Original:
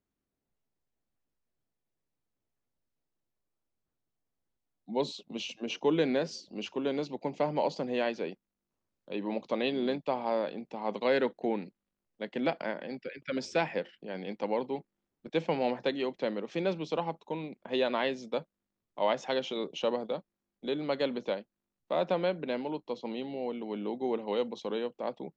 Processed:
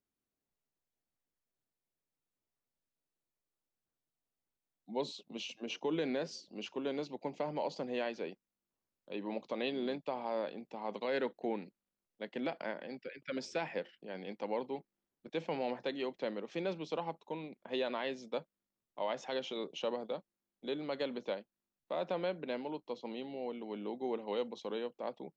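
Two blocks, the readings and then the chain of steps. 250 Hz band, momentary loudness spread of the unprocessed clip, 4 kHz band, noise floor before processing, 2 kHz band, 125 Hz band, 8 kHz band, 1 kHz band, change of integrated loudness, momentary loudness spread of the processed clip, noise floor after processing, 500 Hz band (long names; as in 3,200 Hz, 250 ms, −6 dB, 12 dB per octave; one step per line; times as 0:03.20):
−6.5 dB, 10 LU, −5.5 dB, below −85 dBFS, −6.0 dB, −8.0 dB, can't be measured, −6.5 dB, −6.5 dB, 8 LU, below −85 dBFS, −6.5 dB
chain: low-shelf EQ 170 Hz −5.5 dB
brickwall limiter −21 dBFS, peak gain reduction 5.5 dB
level −4.5 dB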